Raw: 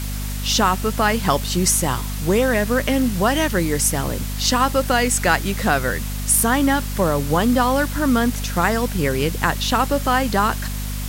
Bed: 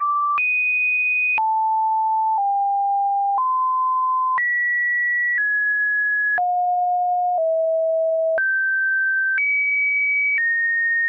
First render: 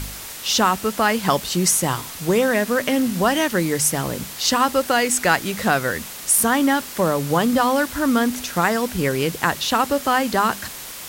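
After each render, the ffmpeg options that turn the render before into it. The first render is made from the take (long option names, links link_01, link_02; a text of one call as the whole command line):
ffmpeg -i in.wav -af "bandreject=frequency=50:width_type=h:width=4,bandreject=frequency=100:width_type=h:width=4,bandreject=frequency=150:width_type=h:width=4,bandreject=frequency=200:width_type=h:width=4,bandreject=frequency=250:width_type=h:width=4" out.wav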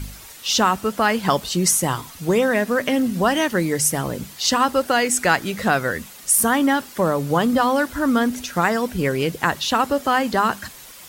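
ffmpeg -i in.wav -af "afftdn=noise_reduction=9:noise_floor=-35" out.wav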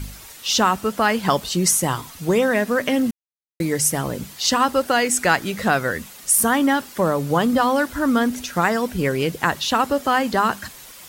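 ffmpeg -i in.wav -filter_complex "[0:a]asplit=3[link_01][link_02][link_03];[link_01]atrim=end=3.11,asetpts=PTS-STARTPTS,afade=type=out:start_time=3.106:duration=0.004:curve=hsin[link_04];[link_02]atrim=start=3.11:end=3.6,asetpts=PTS-STARTPTS,volume=0[link_05];[link_03]atrim=start=3.6,asetpts=PTS-STARTPTS,afade=type=in:duration=0.004:curve=hsin[link_06];[link_04][link_05][link_06]concat=n=3:v=0:a=1" out.wav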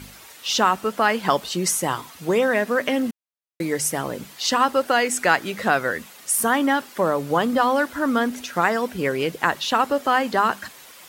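ffmpeg -i in.wav -af "highpass=frequency=180:poles=1,bass=frequency=250:gain=-4,treble=frequency=4000:gain=-5" out.wav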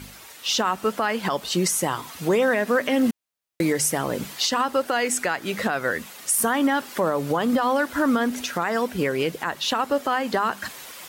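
ffmpeg -i in.wav -af "dynaudnorm=framelen=410:gausssize=3:maxgain=11.5dB,alimiter=limit=-12.5dB:level=0:latency=1:release=198" out.wav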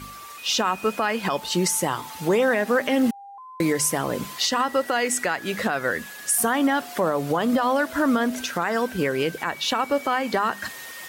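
ffmpeg -i in.wav -i bed.wav -filter_complex "[1:a]volume=-22.5dB[link_01];[0:a][link_01]amix=inputs=2:normalize=0" out.wav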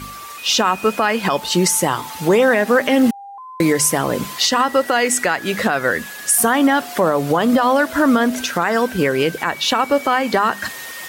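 ffmpeg -i in.wav -af "volume=6.5dB" out.wav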